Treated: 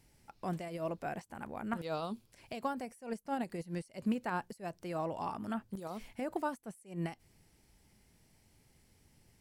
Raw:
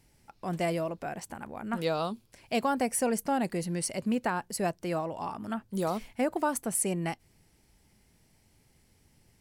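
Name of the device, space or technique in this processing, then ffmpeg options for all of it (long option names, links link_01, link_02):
de-esser from a sidechain: -filter_complex "[0:a]asplit=2[link_01][link_02];[link_02]highpass=frequency=5800:width=0.5412,highpass=frequency=5800:width=1.3066,apad=whole_len=414965[link_03];[link_01][link_03]sidechaincompress=threshold=-57dB:ratio=10:attack=3.8:release=84,volume=-2dB"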